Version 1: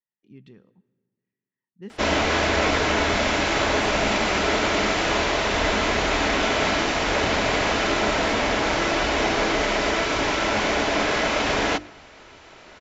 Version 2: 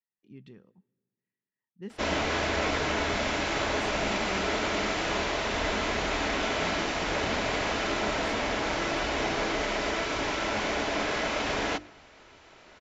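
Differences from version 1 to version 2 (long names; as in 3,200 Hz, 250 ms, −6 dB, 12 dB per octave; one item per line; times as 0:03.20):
speech: send −8.0 dB
background −7.0 dB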